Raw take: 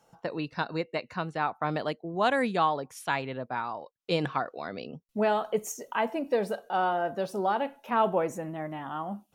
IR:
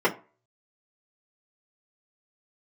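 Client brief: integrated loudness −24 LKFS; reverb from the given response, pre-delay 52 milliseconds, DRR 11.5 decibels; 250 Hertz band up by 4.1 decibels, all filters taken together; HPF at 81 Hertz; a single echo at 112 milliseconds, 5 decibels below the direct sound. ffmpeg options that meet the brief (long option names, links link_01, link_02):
-filter_complex "[0:a]highpass=81,equalizer=frequency=250:width_type=o:gain=5.5,aecho=1:1:112:0.562,asplit=2[link_01][link_02];[1:a]atrim=start_sample=2205,adelay=52[link_03];[link_02][link_03]afir=irnorm=-1:irlink=0,volume=-27.5dB[link_04];[link_01][link_04]amix=inputs=2:normalize=0,volume=3.5dB"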